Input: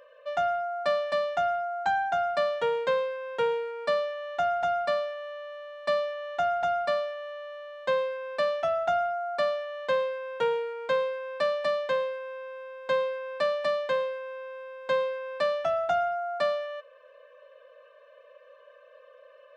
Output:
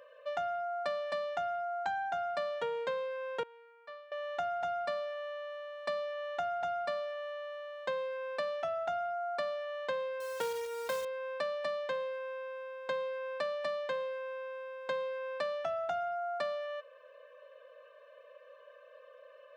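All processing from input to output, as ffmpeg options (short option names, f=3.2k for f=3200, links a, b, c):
-filter_complex "[0:a]asettb=1/sr,asplit=3[a][b][c];[a]atrim=end=3.434[d];[b]atrim=start=3.43:end=4.12,asetpts=PTS-STARTPTS,afade=t=in:d=0.004:c=qsin,afade=t=out:st=0.686:d=0.004:c=qsin,lowpass=1.6k,aderivative[e];[c]atrim=start=4.116[f];[d][e]acrossfade=d=0.004:c1=hsin:c2=qsin[g];[g][f]acrossfade=d=0.004:c1=qsin:c2=hsin,asettb=1/sr,asplit=3[h][i][j];[h]atrim=end=10.204[k];[i]atrim=start=10.2:end=11.05,asetpts=PTS-STARTPTS,afade=t=in:d=0.004:c=qsin,afade=t=out:st=0.846:d=0.004:c=qsin,highpass=140,acrusher=bits=2:mode=log:mix=0:aa=0.000001[l];[j]atrim=start=11.046[m];[k][l]acrossfade=d=0.004:c1=hsin:c2=qsin[n];[n][m]acrossfade=d=0.004:c1=qsin:c2=hsin,highpass=50,acompressor=threshold=-32dB:ratio=3,volume=-2dB"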